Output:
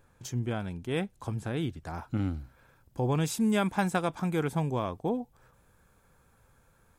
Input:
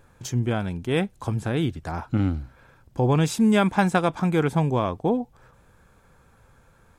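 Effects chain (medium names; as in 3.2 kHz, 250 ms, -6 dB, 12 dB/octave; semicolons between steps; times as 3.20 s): treble shelf 9.4 kHz +3.5 dB, from 1.91 s +11.5 dB; trim -7.5 dB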